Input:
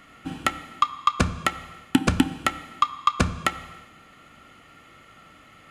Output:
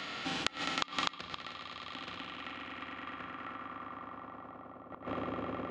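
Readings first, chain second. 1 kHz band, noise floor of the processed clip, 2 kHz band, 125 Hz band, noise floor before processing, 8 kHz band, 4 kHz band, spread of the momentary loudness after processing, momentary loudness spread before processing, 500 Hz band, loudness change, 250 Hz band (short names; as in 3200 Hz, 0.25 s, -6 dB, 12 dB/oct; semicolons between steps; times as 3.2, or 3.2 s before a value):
-14.0 dB, -51 dBFS, -9.0 dB, -20.0 dB, -52 dBFS, -13.5 dB, -5.5 dB, 13 LU, 9 LU, -8.5 dB, -14.5 dB, -16.0 dB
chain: half-wave gain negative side -3 dB; on a send: swelling echo 0.104 s, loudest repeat 8, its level -10.5 dB; on the sum: harmonic-percussive split percussive -15 dB; BPF 140–7300 Hz; tone controls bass -5 dB, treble -1 dB; flipped gate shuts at -23 dBFS, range -30 dB; low-pass sweep 3900 Hz -> 480 Hz, 1.82–5.3; spectral compressor 2:1; gain +8.5 dB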